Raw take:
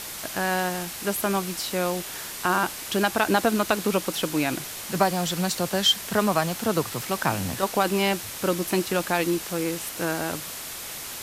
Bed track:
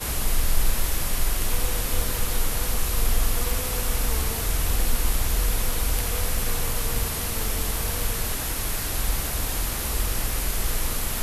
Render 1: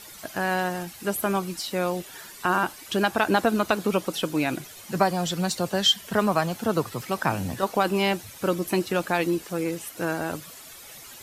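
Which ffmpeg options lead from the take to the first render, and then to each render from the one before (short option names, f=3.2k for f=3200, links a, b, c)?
-af "afftdn=nr=12:nf=-36"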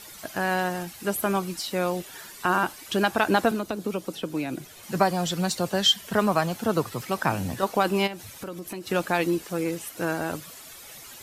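-filter_complex "[0:a]asettb=1/sr,asplit=3[a][b][c];[a]atrim=end=3.514[d];[b]atrim=start=3.51:end=4.83,asetpts=PTS-STARTPTS,afade=t=in:d=0.004:c=qsin,afade=t=out:st=1.316:d=0.004:c=qsin,acrossover=split=220|530|3500[e][f][g][h];[e]acompressor=threshold=-38dB:ratio=3[i];[f]acompressor=threshold=-29dB:ratio=3[j];[g]acompressor=threshold=-40dB:ratio=3[k];[h]acompressor=threshold=-48dB:ratio=3[l];[i][j][k][l]amix=inputs=4:normalize=0[m];[c]atrim=start=4.826[n];[d][m]acrossfade=d=0.004:c1=hsin:c2=qsin[o];[o][n]acrossfade=d=0.004:c1=qsin:c2=hsin,asplit=3[p][q][r];[p]afade=t=out:st=8.06:d=0.02[s];[q]acompressor=threshold=-33dB:ratio=5:attack=3.2:release=140:knee=1:detection=peak,afade=t=in:st=8.06:d=0.02,afade=t=out:st=8.86:d=0.02[t];[r]afade=t=in:st=8.86:d=0.02[u];[s][t][u]amix=inputs=3:normalize=0"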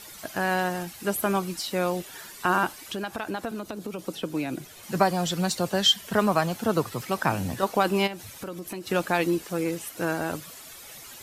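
-filter_complex "[0:a]asettb=1/sr,asplit=3[a][b][c];[a]atrim=end=2.854[d];[b]atrim=start=2.85:end=3.99,asetpts=PTS-STARTPTS,afade=t=in:d=0.004:c=qsin,afade=t=out:st=1.136:d=0.004:c=qsin,acompressor=threshold=-32dB:ratio=2.5:attack=3.2:release=140:knee=1:detection=peak[e];[c]atrim=start=3.986[f];[d][e]acrossfade=d=0.004:c1=hsin:c2=qsin[g];[g][f]acrossfade=d=0.004:c1=qsin:c2=hsin"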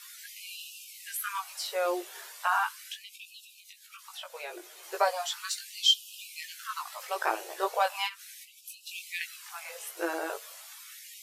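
-af "flanger=delay=17.5:depth=2.2:speed=1.2,afftfilt=real='re*gte(b*sr/1024,320*pow(2500/320,0.5+0.5*sin(2*PI*0.37*pts/sr)))':imag='im*gte(b*sr/1024,320*pow(2500/320,0.5+0.5*sin(2*PI*0.37*pts/sr)))':win_size=1024:overlap=0.75"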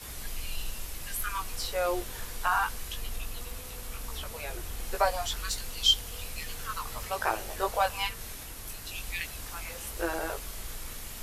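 -filter_complex "[1:a]volume=-15dB[a];[0:a][a]amix=inputs=2:normalize=0"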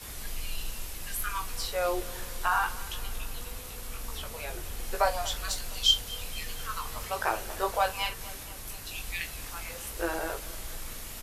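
-filter_complex "[0:a]asplit=2[a][b];[b]adelay=41,volume=-13dB[c];[a][c]amix=inputs=2:normalize=0,aecho=1:1:234|468|702|936|1170:0.112|0.0662|0.0391|0.023|0.0136"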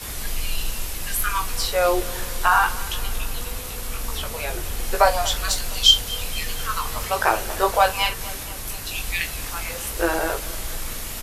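-af "volume=9.5dB,alimiter=limit=-3dB:level=0:latency=1"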